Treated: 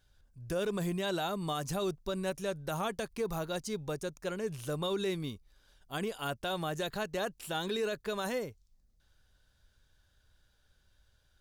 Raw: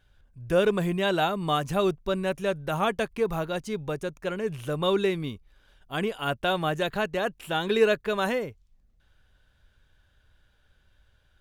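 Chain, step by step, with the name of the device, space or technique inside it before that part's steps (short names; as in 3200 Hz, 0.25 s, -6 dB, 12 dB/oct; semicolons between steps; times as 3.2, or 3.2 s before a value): over-bright horn tweeter (resonant high shelf 3700 Hz +7 dB, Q 1.5; limiter -19.5 dBFS, peak gain reduction 9.5 dB); gain -5.5 dB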